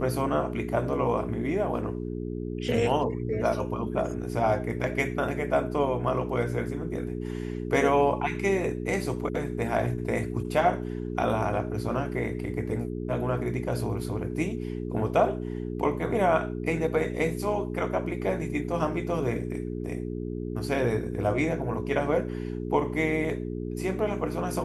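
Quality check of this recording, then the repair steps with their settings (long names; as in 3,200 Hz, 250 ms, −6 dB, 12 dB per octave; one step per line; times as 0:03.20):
mains hum 60 Hz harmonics 7 −33 dBFS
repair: hum removal 60 Hz, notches 7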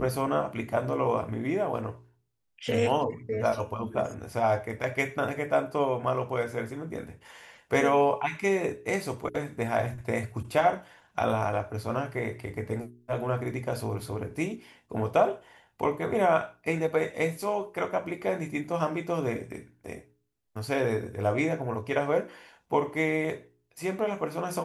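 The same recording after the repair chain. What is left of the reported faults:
none of them is left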